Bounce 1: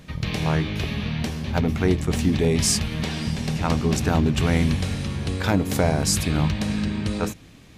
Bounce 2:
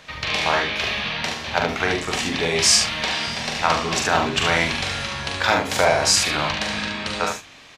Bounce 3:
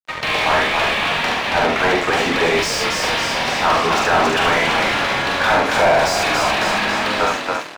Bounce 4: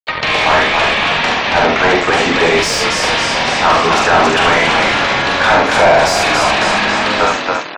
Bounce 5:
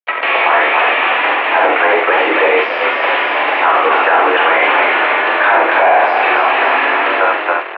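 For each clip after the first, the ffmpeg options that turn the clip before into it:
ffmpeg -i in.wav -filter_complex "[0:a]acrossover=split=570 7100:gain=0.1 1 0.178[link_01][link_02][link_03];[link_01][link_02][link_03]amix=inputs=3:normalize=0,asplit=2[link_04][link_05];[link_05]adelay=45,volume=-12dB[link_06];[link_04][link_06]amix=inputs=2:normalize=0,asplit=2[link_07][link_08];[link_08]aecho=0:1:42|72:0.531|0.562[link_09];[link_07][link_09]amix=inputs=2:normalize=0,volume=8dB" out.wav
ffmpeg -i in.wav -filter_complex "[0:a]asplit=7[link_01][link_02][link_03][link_04][link_05][link_06][link_07];[link_02]adelay=276,afreqshift=41,volume=-7dB[link_08];[link_03]adelay=552,afreqshift=82,volume=-12.7dB[link_09];[link_04]adelay=828,afreqshift=123,volume=-18.4dB[link_10];[link_05]adelay=1104,afreqshift=164,volume=-24dB[link_11];[link_06]adelay=1380,afreqshift=205,volume=-29.7dB[link_12];[link_07]adelay=1656,afreqshift=246,volume=-35.4dB[link_13];[link_01][link_08][link_09][link_10][link_11][link_12][link_13]amix=inputs=7:normalize=0,aeval=exprs='sgn(val(0))*max(abs(val(0))-0.0141,0)':channel_layout=same,asplit=2[link_14][link_15];[link_15]highpass=frequency=720:poles=1,volume=28dB,asoftclip=type=tanh:threshold=-1dB[link_16];[link_14][link_16]amix=inputs=2:normalize=0,lowpass=frequency=1100:poles=1,volume=-6dB,volume=-2.5dB" out.wav
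ffmpeg -i in.wav -af "afftfilt=real='re*gte(hypot(re,im),0.0112)':imag='im*gte(hypot(re,im),0.0112)':win_size=1024:overlap=0.75,acompressor=mode=upward:threshold=-19dB:ratio=2.5,volume=5dB" out.wav
ffmpeg -i in.wav -af "highpass=frequency=280:width_type=q:width=0.5412,highpass=frequency=280:width_type=q:width=1.307,lowpass=frequency=2700:width_type=q:width=0.5176,lowpass=frequency=2700:width_type=q:width=0.7071,lowpass=frequency=2700:width_type=q:width=1.932,afreqshift=58,alimiter=level_in=3dB:limit=-1dB:release=50:level=0:latency=1,volume=-1dB" out.wav

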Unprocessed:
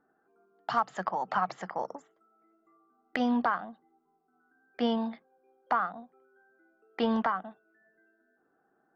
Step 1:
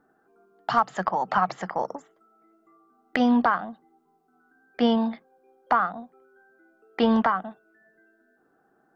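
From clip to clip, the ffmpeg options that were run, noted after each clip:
ffmpeg -i in.wav -af "lowshelf=frequency=150:gain=5,volume=6dB" out.wav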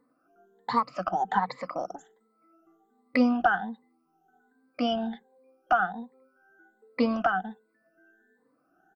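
ffmpeg -i in.wav -af "afftfilt=real='re*pow(10,20/40*sin(2*PI*(0.97*log(max(b,1)*sr/1024/100)/log(2)-(1.3)*(pts-256)/sr)))':imag='im*pow(10,20/40*sin(2*PI*(0.97*log(max(b,1)*sr/1024/100)/log(2)-(1.3)*(pts-256)/sr)))':win_size=1024:overlap=0.75,aecho=1:1:4:0.37,volume=-7dB" out.wav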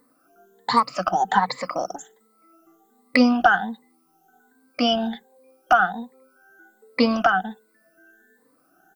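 ffmpeg -i in.wav -af "crystalizer=i=3.5:c=0,volume=5.5dB" out.wav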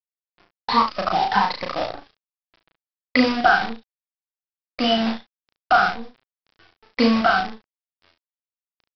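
ffmpeg -i in.wav -af "aresample=11025,acrusher=bits=5:dc=4:mix=0:aa=0.000001,aresample=44100,aecho=1:1:35|71:0.668|0.299,volume=-1dB" out.wav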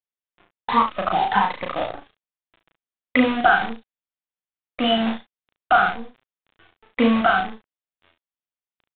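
ffmpeg -i in.wav -af "aresample=8000,aresample=44100" out.wav

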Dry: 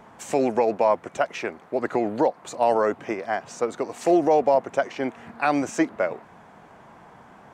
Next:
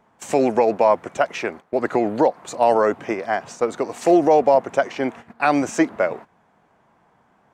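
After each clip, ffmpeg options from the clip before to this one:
ffmpeg -i in.wav -af "agate=range=-15dB:threshold=-39dB:ratio=16:detection=peak,volume=4dB" out.wav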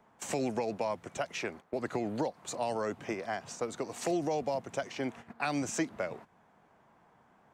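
ffmpeg -i in.wav -filter_complex "[0:a]acrossover=split=180|3000[link_01][link_02][link_03];[link_02]acompressor=threshold=-33dB:ratio=2.5[link_04];[link_01][link_04][link_03]amix=inputs=3:normalize=0,volume=-4.5dB" out.wav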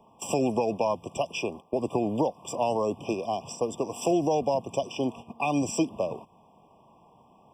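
ffmpeg -i in.wav -af "afftfilt=real='re*eq(mod(floor(b*sr/1024/1200),2),0)':imag='im*eq(mod(floor(b*sr/1024/1200),2),0)':win_size=1024:overlap=0.75,volume=7dB" out.wav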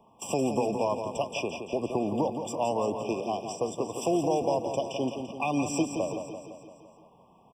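ffmpeg -i in.wav -af "aecho=1:1:170|340|510|680|850|1020|1190:0.422|0.245|0.142|0.0823|0.0477|0.0277|0.0161,volume=-2dB" out.wav

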